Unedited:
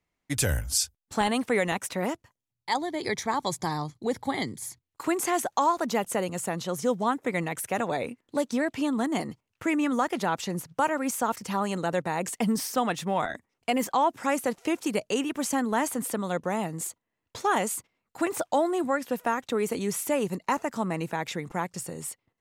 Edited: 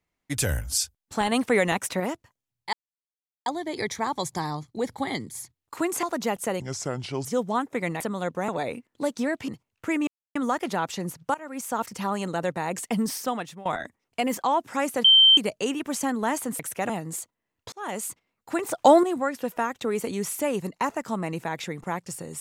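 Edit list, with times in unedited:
1.32–2.00 s: gain +3.5 dB
2.73 s: insert silence 0.73 s
5.30–5.71 s: delete
6.28–6.77 s: speed 75%
7.52–7.82 s: swap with 16.09–16.57 s
8.82–9.26 s: delete
9.85 s: insert silence 0.28 s
10.84–11.32 s: fade in, from -20 dB
12.68–13.15 s: fade out, to -18 dB
14.54–14.87 s: bleep 3.12 kHz -11.5 dBFS
17.40–17.77 s: fade in
18.46–18.71 s: gain +9 dB

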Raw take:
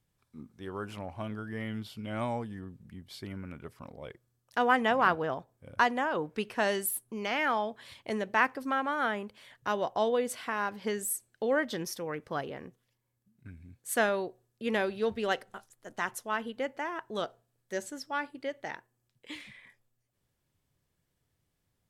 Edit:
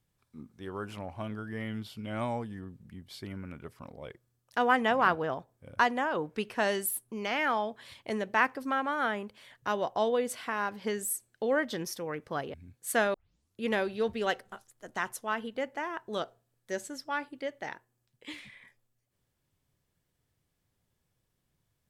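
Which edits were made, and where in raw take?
12.54–13.56 s: delete
14.16 s: tape start 0.48 s

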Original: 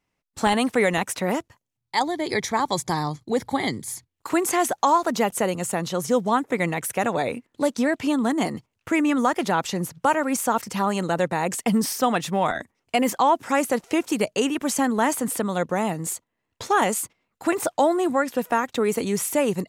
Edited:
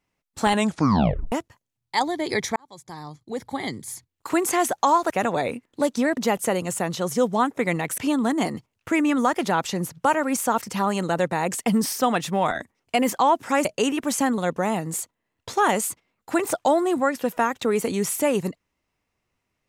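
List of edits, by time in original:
0.52 s: tape stop 0.80 s
2.56–4.37 s: fade in
6.91–7.98 s: move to 5.10 s
13.65–14.23 s: delete
14.96–15.51 s: delete

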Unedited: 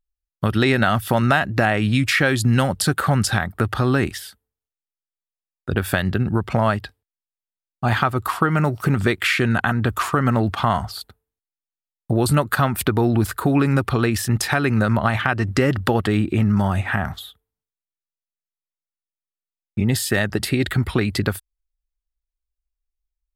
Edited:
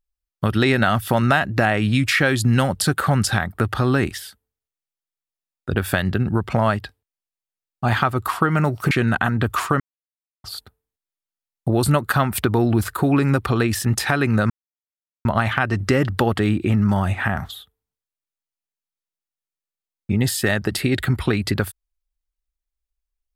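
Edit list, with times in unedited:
8.91–9.34 s: delete
10.23–10.87 s: mute
14.93 s: insert silence 0.75 s

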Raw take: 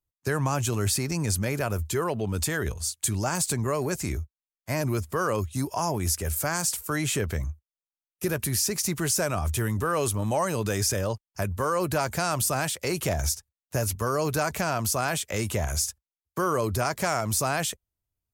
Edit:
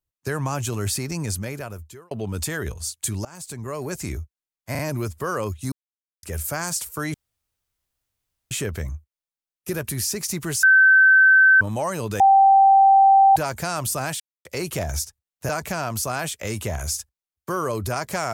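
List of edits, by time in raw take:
1.22–2.11 s: fade out
3.25–4.04 s: fade in, from -21 dB
4.71 s: stutter 0.04 s, 3 plays
5.64–6.15 s: mute
7.06 s: insert room tone 1.37 s
9.18–10.16 s: bleep 1.54 kHz -10 dBFS
10.75–11.91 s: bleep 781 Hz -10 dBFS
12.75 s: insert silence 0.25 s
13.79–14.38 s: delete

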